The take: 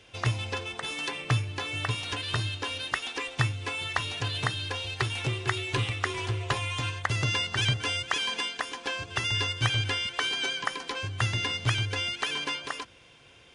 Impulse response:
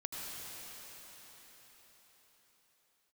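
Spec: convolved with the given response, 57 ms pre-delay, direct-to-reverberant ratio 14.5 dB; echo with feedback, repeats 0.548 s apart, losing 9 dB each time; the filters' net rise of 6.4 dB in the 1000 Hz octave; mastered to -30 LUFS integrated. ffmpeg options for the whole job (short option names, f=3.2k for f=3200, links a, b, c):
-filter_complex "[0:a]equalizer=f=1k:t=o:g=7.5,aecho=1:1:548|1096|1644|2192:0.355|0.124|0.0435|0.0152,asplit=2[a][b];[1:a]atrim=start_sample=2205,adelay=57[c];[b][c]afir=irnorm=-1:irlink=0,volume=-16dB[d];[a][d]amix=inputs=2:normalize=0,volume=-2.5dB"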